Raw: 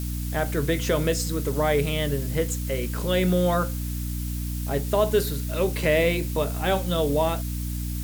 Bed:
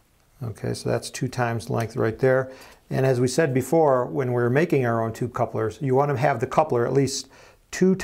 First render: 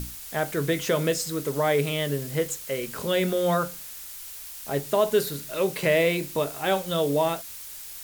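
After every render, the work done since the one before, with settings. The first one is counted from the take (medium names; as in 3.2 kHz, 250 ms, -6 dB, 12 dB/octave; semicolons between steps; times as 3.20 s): hum notches 60/120/180/240/300 Hz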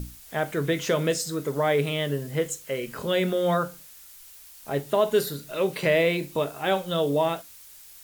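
noise print and reduce 8 dB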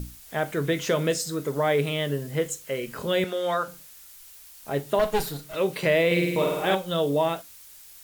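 3.24–3.68 s: frequency weighting A; 4.99–5.56 s: comb filter that takes the minimum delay 6.4 ms; 6.06–6.75 s: flutter echo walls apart 8.8 m, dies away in 1.1 s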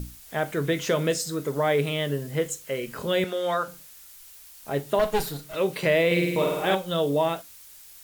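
no audible change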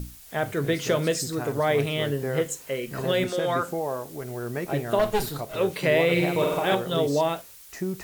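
add bed -11 dB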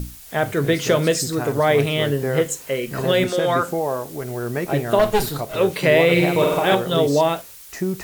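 trim +6 dB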